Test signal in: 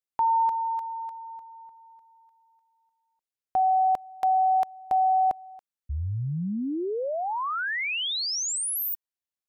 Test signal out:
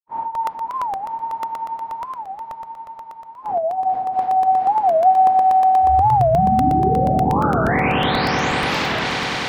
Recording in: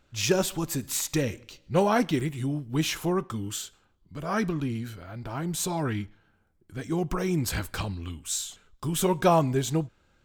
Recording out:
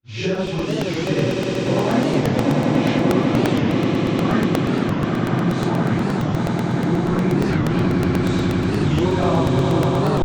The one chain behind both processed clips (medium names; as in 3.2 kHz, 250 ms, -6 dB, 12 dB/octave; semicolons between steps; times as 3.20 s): phase randomisation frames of 200 ms; expander -48 dBFS; graphic EQ 125/250/500/1000/2000/4000/8000 Hz +7/+10/+4/+4/+6/+4/-5 dB; compression 2.5:1, threshold -19 dBFS; distance through air 120 m; on a send: echo with a slow build-up 98 ms, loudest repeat 8, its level -7 dB; on the sum: crackling interface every 0.12 s, samples 64, repeat, from 0.35 s; warped record 45 rpm, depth 250 cents